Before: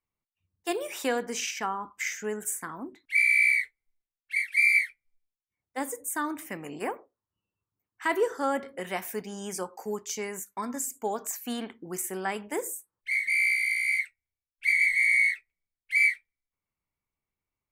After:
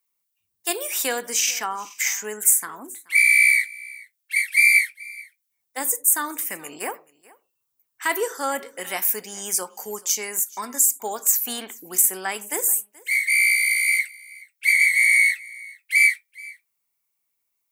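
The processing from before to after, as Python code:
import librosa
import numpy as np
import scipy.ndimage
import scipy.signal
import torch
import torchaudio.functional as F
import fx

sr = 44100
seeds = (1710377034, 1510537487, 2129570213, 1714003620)

p1 = fx.riaa(x, sr, side='recording')
p2 = p1 + fx.echo_single(p1, sr, ms=429, db=-22.5, dry=0)
y = p2 * 10.0 ** (3.0 / 20.0)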